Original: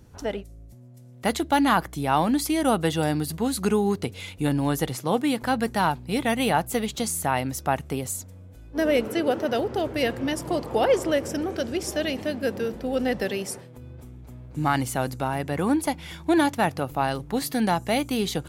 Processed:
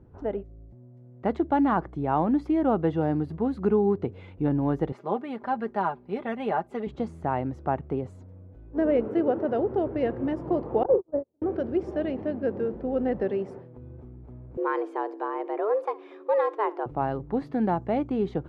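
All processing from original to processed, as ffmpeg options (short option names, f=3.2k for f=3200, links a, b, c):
-filter_complex "[0:a]asettb=1/sr,asplit=3[a][b][c];[a]atrim=end=4.924[d];[b]atrim=start=4.92:end=6.87,asetpts=PTS-STARTPTS,afade=t=in:d=0.004:c=qsin,afade=t=out:st=1.946:d=0.004:c=qsin,highpass=f=560:p=1,aecho=1:1:5:0.64,atrim=end_sample=85995[e];[c]atrim=start=6.866[f];[d][e]acrossfade=d=0.004:c1=hsin:c2=qsin[g];[g][f]acrossfade=d=0.004:c1=qsin:c2=hsin,asettb=1/sr,asplit=3[h][i][j];[h]atrim=end=10.834[k];[i]atrim=start=10.83:end=11.42,asetpts=PTS-STARTPTS,afade=t=in:d=0.004:c=qsin,afade=t=out:st=0.586:d=0.004:c=qsin,agate=range=-46dB:threshold=-21dB:ratio=16:release=100:detection=peak,lowpass=f=1.1k:w=0.5412,lowpass=f=1.1k:w=1.3066,asplit=2[l][m];[m]adelay=39,volume=-8dB[n];[l][n]amix=inputs=2:normalize=0,atrim=end_sample=26019[o];[j]atrim=start=11.416[p];[k][o]acrossfade=d=0.004:c1=hsin:c2=qsin[q];[q][p]acrossfade=d=0.004:c1=qsin:c2=hsin,asettb=1/sr,asplit=3[r][s][t];[r]atrim=end=14.574[u];[s]atrim=start=14.57:end=16.86,asetpts=PTS-STARTPTS,afade=t=in:d=0.004:c=qsin,afade=t=out:st=2.286:d=0.004:c=qsin,highpass=f=210:p=1,afreqshift=210,aecho=1:1:63|126|189:0.0944|0.0321|0.0109,atrim=end_sample=100989[v];[t]atrim=start=16.856[w];[u][v]acrossfade=d=0.004:c1=hsin:c2=qsin[x];[x][w]acrossfade=d=0.004:c1=qsin:c2=hsin,lowpass=1.1k,equalizer=f=370:t=o:w=0.45:g=5.5,volume=-2dB"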